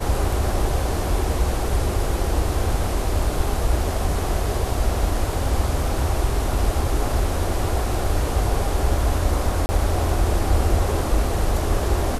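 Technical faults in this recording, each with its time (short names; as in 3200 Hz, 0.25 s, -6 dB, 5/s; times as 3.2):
9.66–9.69 gap 30 ms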